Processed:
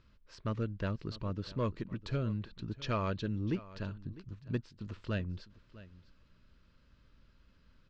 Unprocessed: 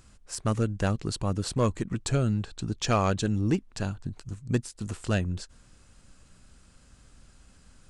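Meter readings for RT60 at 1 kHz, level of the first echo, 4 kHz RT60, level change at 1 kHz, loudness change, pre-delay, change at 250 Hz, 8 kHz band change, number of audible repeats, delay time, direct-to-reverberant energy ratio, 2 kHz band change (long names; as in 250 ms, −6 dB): no reverb audible, −18.0 dB, no reverb audible, −9.5 dB, −9.0 dB, no reverb audible, −8.5 dB, below −25 dB, 1, 653 ms, no reverb audible, −8.5 dB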